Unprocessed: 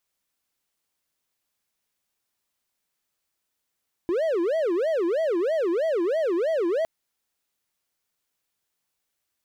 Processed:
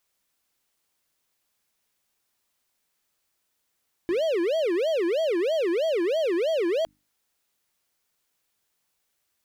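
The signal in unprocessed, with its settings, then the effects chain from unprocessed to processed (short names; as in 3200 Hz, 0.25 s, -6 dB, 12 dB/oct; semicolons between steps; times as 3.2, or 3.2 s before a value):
siren wail 334–655 Hz 3.1/s triangle -19 dBFS 2.76 s
notches 50/100/150/200/250/300 Hz; in parallel at -4 dB: wavefolder -31.5 dBFS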